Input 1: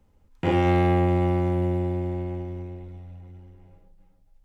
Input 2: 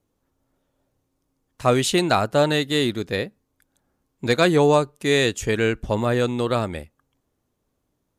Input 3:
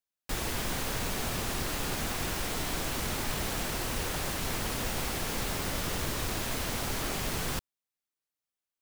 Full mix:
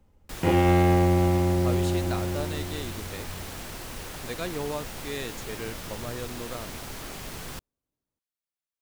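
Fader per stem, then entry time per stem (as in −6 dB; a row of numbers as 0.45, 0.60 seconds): +0.5, −16.0, −5.5 decibels; 0.00, 0.00, 0.00 seconds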